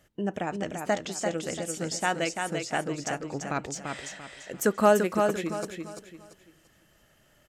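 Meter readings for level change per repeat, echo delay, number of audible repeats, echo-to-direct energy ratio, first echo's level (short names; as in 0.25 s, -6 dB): -10.0 dB, 0.341 s, 4, -4.5 dB, -5.0 dB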